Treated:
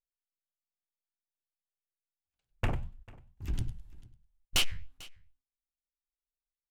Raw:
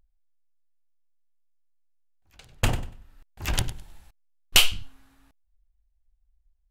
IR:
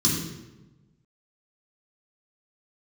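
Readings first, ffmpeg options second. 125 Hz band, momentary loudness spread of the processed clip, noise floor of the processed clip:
-6.0 dB, 22 LU, under -85 dBFS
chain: -filter_complex "[0:a]afwtdn=0.0316,agate=range=-15dB:threshold=-45dB:ratio=16:detection=peak,flanger=delay=4.4:depth=9.2:regen=-79:speed=2:shape=triangular,asoftclip=type=tanh:threshold=-21dB,asplit=2[a][b];[b]aecho=0:1:445:0.0794[c];[a][c]amix=inputs=2:normalize=0"

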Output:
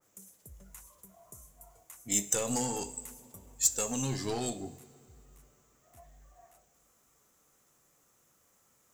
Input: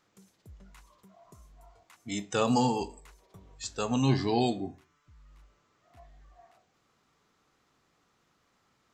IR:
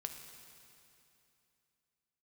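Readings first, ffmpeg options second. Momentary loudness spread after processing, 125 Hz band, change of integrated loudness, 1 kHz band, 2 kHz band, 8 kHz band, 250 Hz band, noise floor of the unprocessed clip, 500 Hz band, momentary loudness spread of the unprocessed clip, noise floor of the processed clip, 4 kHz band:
23 LU, -8.0 dB, -2.0 dB, -9.5 dB, -4.5 dB, +13.5 dB, -8.0 dB, -72 dBFS, -6.0 dB, 14 LU, -69 dBFS, -3.5 dB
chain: -filter_complex "[0:a]equalizer=f=550:t=o:w=0.42:g=6.5,alimiter=limit=-20dB:level=0:latency=1:release=362,aeval=exprs='(tanh(17.8*val(0)+0.3)-tanh(0.3))/17.8':c=same,aexciter=amount=7.7:drive=5.1:freq=6.3k,flanger=delay=2.4:depth=9.9:regen=-68:speed=0.28:shape=triangular,asplit=2[a][b];[1:a]atrim=start_sample=2205,lowshelf=f=170:g=8,highshelf=f=7.6k:g=8[c];[b][c]afir=irnorm=-1:irlink=0,volume=-9dB[d];[a][d]amix=inputs=2:normalize=0,adynamicequalizer=threshold=0.00398:dfrequency=1800:dqfactor=0.7:tfrequency=1800:tqfactor=0.7:attack=5:release=100:ratio=0.375:range=2.5:mode=boostabove:tftype=highshelf"

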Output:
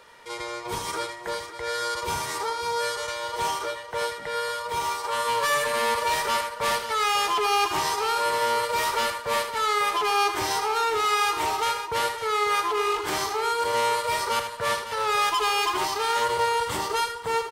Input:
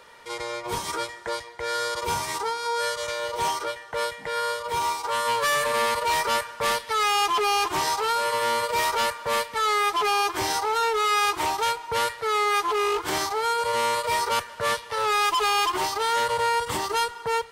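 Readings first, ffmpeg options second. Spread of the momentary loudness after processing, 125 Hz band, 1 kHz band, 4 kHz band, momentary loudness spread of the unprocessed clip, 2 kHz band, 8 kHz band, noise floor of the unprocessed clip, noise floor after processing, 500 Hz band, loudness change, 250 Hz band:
7 LU, -0.5 dB, -0.5 dB, -0.5 dB, 8 LU, -0.5 dB, -0.5 dB, -42 dBFS, -38 dBFS, -0.5 dB, -0.5 dB, -1.0 dB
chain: -af "aecho=1:1:79|548:0.376|0.282,volume=-1.5dB"

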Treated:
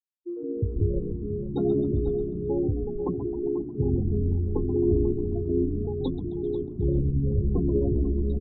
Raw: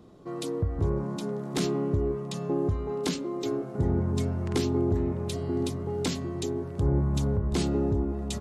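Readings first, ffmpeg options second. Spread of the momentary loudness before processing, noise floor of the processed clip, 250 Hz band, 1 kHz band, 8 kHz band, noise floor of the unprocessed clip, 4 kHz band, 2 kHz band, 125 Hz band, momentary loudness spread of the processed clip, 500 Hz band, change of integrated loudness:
6 LU, -36 dBFS, +2.0 dB, -8.0 dB, under -40 dB, -37 dBFS, under -15 dB, under -30 dB, +2.0 dB, 6 LU, +2.5 dB, +2.0 dB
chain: -filter_complex "[0:a]afftfilt=real='re*gte(hypot(re,im),0.0794)':imag='im*gte(hypot(re,im),0.0794)':win_size=1024:overlap=0.75,flanger=delay=5.1:depth=9.2:regen=43:speed=0.3:shape=sinusoidal,asplit=2[a][b];[b]asplit=7[c][d][e][f][g][h][i];[c]adelay=132,afreqshift=-59,volume=-9dB[j];[d]adelay=264,afreqshift=-118,volume=-13.7dB[k];[e]adelay=396,afreqshift=-177,volume=-18.5dB[l];[f]adelay=528,afreqshift=-236,volume=-23.2dB[m];[g]adelay=660,afreqshift=-295,volume=-27.9dB[n];[h]adelay=792,afreqshift=-354,volume=-32.7dB[o];[i]adelay=924,afreqshift=-413,volume=-37.4dB[p];[j][k][l][m][n][o][p]amix=inputs=7:normalize=0[q];[a][q]amix=inputs=2:normalize=0,acontrast=59,equalizer=f=170:t=o:w=1.8:g=-5.5,asplit=2[r][s];[s]aecho=0:1:491:0.266[t];[r][t]amix=inputs=2:normalize=0,anlmdn=0.398,volume=2dB"

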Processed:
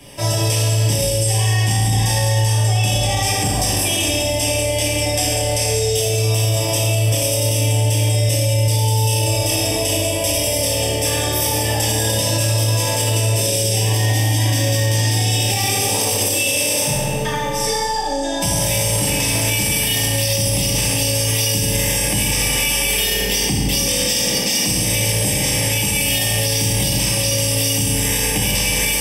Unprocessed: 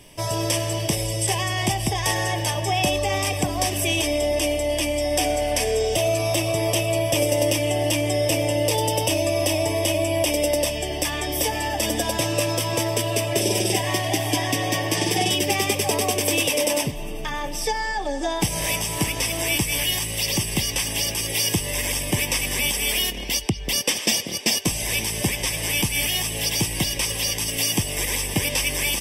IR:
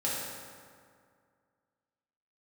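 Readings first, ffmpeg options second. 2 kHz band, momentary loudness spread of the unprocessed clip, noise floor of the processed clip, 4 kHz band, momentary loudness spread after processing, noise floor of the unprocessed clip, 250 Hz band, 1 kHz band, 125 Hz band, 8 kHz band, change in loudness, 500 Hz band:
+3.0 dB, 3 LU, -20 dBFS, +5.0 dB, 2 LU, -30 dBFS, +2.0 dB, +2.0 dB, +10.5 dB, +7.0 dB, +5.5 dB, +1.5 dB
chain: -filter_complex "[1:a]atrim=start_sample=2205[a];[0:a][a]afir=irnorm=-1:irlink=0,acrossover=split=130|3000[b][c][d];[c]acompressor=threshold=-23dB:ratio=10[e];[b][e][d]amix=inputs=3:normalize=0,alimiter=limit=-12.5dB:level=0:latency=1:release=12,volume=3.5dB"

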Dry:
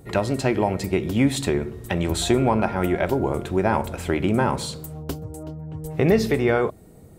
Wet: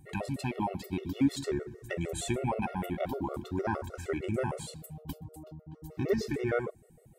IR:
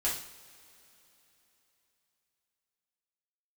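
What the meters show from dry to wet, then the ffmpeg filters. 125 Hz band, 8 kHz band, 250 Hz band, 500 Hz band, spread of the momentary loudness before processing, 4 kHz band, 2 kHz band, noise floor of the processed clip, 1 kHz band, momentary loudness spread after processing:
-11.5 dB, -10.5 dB, -10.5 dB, -12.0 dB, 13 LU, -13.0 dB, -11.5 dB, -60 dBFS, -11.0 dB, 14 LU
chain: -af "afftfilt=real='re*pow(10,7/40*sin(2*PI*(0.5*log(max(b,1)*sr/1024/100)/log(2)-(0.43)*(pts-256)/sr)))':imag='im*pow(10,7/40*sin(2*PI*(0.5*log(max(b,1)*sr/1024/100)/log(2)-(0.43)*(pts-256)/sr)))':win_size=1024:overlap=0.75,afftfilt=real='re*gt(sin(2*PI*6.5*pts/sr)*(1-2*mod(floor(b*sr/1024/370),2)),0)':imag='im*gt(sin(2*PI*6.5*pts/sr)*(1-2*mod(floor(b*sr/1024/370),2)),0)':win_size=1024:overlap=0.75,volume=-8.5dB"

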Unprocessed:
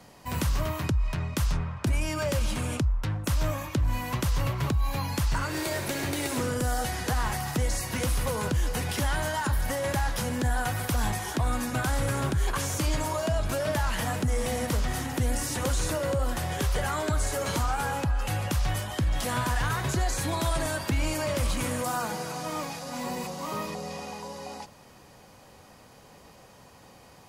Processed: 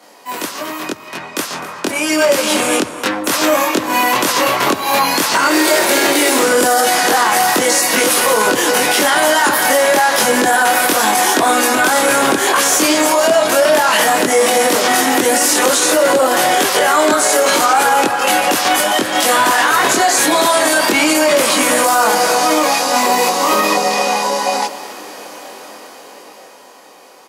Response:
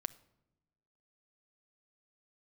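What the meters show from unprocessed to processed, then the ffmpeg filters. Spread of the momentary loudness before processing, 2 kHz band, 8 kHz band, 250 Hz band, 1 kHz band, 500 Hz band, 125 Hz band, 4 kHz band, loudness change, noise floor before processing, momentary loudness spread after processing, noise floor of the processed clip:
5 LU, +19.5 dB, +20.0 dB, +14.0 dB, +19.5 dB, +18.5 dB, -8.5 dB, +20.0 dB, +16.5 dB, -53 dBFS, 8 LU, -37 dBFS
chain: -filter_complex "[0:a]highpass=f=290:w=0.5412,highpass=f=290:w=1.3066,aecho=1:1:256:0.133,asplit=2[a][b];[1:a]atrim=start_sample=2205,asetrate=27783,aresample=44100,adelay=23[c];[b][c]afir=irnorm=-1:irlink=0,volume=1.5dB[d];[a][d]amix=inputs=2:normalize=0,dynaudnorm=f=140:g=31:m=16dB,alimiter=level_in=9dB:limit=-1dB:release=50:level=0:latency=1,volume=-2.5dB"

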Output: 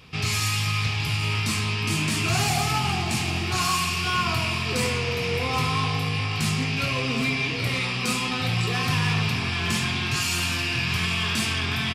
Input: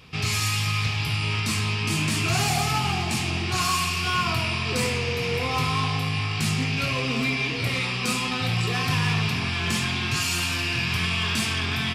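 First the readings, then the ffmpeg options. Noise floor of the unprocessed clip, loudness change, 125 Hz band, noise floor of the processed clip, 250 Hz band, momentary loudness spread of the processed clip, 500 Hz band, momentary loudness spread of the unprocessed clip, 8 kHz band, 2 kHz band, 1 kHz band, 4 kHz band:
-28 dBFS, 0.0 dB, 0.0 dB, -27 dBFS, 0.0 dB, 2 LU, 0.0 dB, 2 LU, 0.0 dB, 0.0 dB, 0.0 dB, 0.0 dB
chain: -af "aecho=1:1:775:0.178"

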